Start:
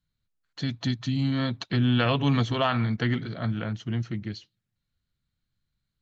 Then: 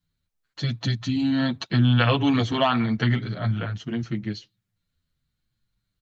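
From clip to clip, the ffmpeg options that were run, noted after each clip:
-filter_complex "[0:a]asplit=2[s0][s1];[s1]adelay=8.1,afreqshift=-0.83[s2];[s0][s2]amix=inputs=2:normalize=1,volume=2"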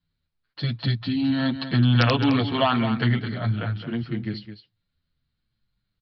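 -af "aresample=11025,aeval=exprs='(mod(2.37*val(0)+1,2)-1)/2.37':c=same,aresample=44100,aecho=1:1:213:0.299"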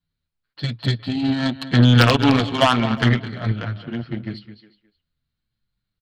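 -filter_complex "[0:a]asplit=2[s0][s1];[s1]adelay=360,highpass=300,lowpass=3400,asoftclip=type=hard:threshold=0.178,volume=0.178[s2];[s0][s2]amix=inputs=2:normalize=0,aeval=exprs='0.473*(cos(1*acos(clip(val(0)/0.473,-1,1)))-cos(1*PI/2))+0.0422*(cos(7*acos(clip(val(0)/0.473,-1,1)))-cos(7*PI/2))':c=same,volume=2"

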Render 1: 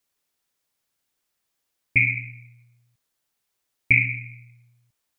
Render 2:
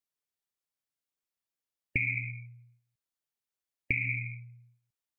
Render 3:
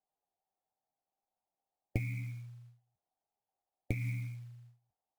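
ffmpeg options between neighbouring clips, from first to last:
-af "afftdn=nr=17:nf=-40,alimiter=limit=0.237:level=0:latency=1:release=128,acompressor=threshold=0.0398:ratio=6,volume=1.19"
-af "flanger=delay=9.1:depth=2.5:regen=49:speed=1.5:shape=triangular,lowpass=f=770:t=q:w=8.3,acrusher=bits=6:mode=log:mix=0:aa=0.000001,volume=1.88"

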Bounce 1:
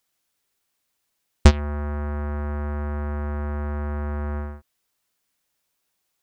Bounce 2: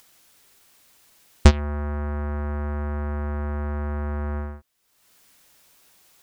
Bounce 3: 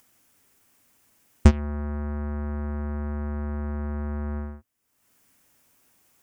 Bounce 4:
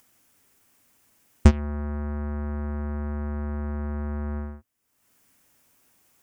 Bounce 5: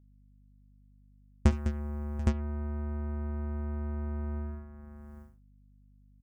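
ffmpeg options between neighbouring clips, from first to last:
-af "acompressor=mode=upward:threshold=0.00891:ratio=2.5"
-af "equalizer=f=100:t=o:w=0.67:g=7,equalizer=f=250:t=o:w=0.67:g=8,equalizer=f=4000:t=o:w=0.67:g=-8,volume=0.531"
-af anull
-af "aecho=1:1:52|69|204|737|814:0.126|0.112|0.299|0.106|0.631,agate=range=0.0224:threshold=0.0398:ratio=3:detection=peak,aeval=exprs='val(0)+0.00316*(sin(2*PI*50*n/s)+sin(2*PI*2*50*n/s)/2+sin(2*PI*3*50*n/s)/3+sin(2*PI*4*50*n/s)/4+sin(2*PI*5*50*n/s)/5)':c=same,volume=0.376"

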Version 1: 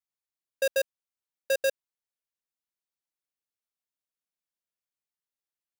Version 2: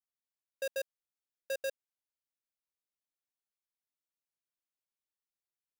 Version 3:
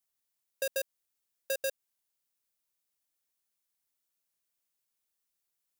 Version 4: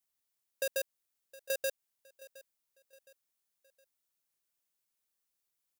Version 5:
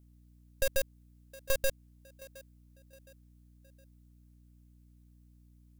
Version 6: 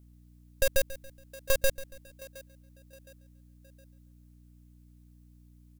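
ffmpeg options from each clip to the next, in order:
-af "alimiter=level_in=1.26:limit=0.0631:level=0:latency=1,volume=0.794,volume=0.447"
-af "highshelf=f=5600:g=9,acompressor=threshold=0.0158:ratio=2,volume=1.68"
-af "aecho=1:1:715|1430|2145:0.1|0.041|0.0168,volume=0.891"
-af "aeval=exprs='val(0)+0.000891*(sin(2*PI*60*n/s)+sin(2*PI*2*60*n/s)/2+sin(2*PI*3*60*n/s)/3+sin(2*PI*4*60*n/s)/4+sin(2*PI*5*60*n/s)/5)':c=same,aeval=exprs='0.106*(cos(1*acos(clip(val(0)/0.106,-1,1)))-cos(1*PI/2))+0.0335*(cos(6*acos(clip(val(0)/0.106,-1,1)))-cos(6*PI/2))':c=same,volume=1.33"
-af "aecho=1:1:140|280|420:0.141|0.0551|0.0215,volume=1.58"

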